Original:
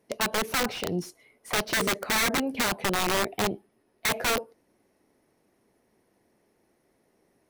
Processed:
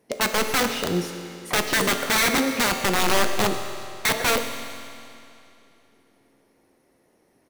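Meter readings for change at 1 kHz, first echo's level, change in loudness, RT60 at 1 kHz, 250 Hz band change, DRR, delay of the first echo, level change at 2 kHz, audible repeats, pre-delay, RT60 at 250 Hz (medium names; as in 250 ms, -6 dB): +5.0 dB, -17.5 dB, +4.5 dB, 2.8 s, +5.0 dB, 5.5 dB, 128 ms, +5.0 dB, 1, 4 ms, 2.8 s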